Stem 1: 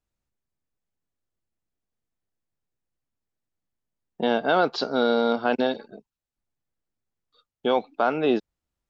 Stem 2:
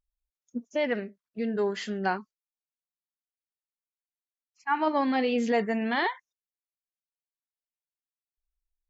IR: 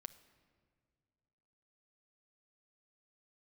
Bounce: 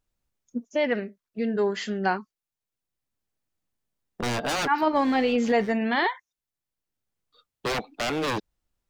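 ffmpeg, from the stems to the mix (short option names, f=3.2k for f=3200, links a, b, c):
-filter_complex "[0:a]aeval=exprs='0.0668*(abs(mod(val(0)/0.0668+3,4)-2)-1)':c=same,volume=2dB[a];[1:a]volume=3dB,asplit=2[b][c];[c]apad=whole_len=392448[d];[a][d]sidechaincompress=threshold=-41dB:ratio=5:attack=16:release=769[e];[e][b]amix=inputs=2:normalize=0"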